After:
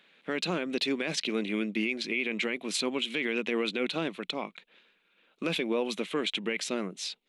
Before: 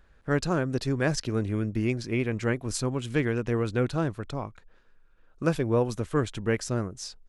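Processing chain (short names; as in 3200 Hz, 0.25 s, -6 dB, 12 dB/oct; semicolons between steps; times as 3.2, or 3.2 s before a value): elliptic high-pass 180 Hz, stop band 40 dB; band shelf 2900 Hz +15.5 dB 1.2 oct; limiter -19 dBFS, peak gain reduction 11.5 dB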